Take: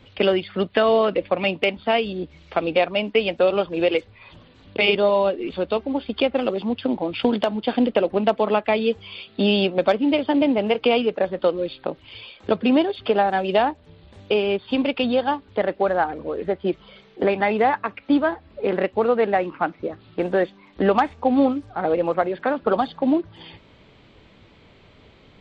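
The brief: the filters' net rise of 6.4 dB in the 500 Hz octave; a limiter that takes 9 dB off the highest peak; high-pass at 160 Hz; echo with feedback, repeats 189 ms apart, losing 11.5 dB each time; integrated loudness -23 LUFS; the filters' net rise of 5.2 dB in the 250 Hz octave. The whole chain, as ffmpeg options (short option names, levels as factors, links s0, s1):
-af "highpass=160,equalizer=f=250:t=o:g=5,equalizer=f=500:t=o:g=6.5,alimiter=limit=0.335:level=0:latency=1,aecho=1:1:189|378|567:0.266|0.0718|0.0194,volume=0.668"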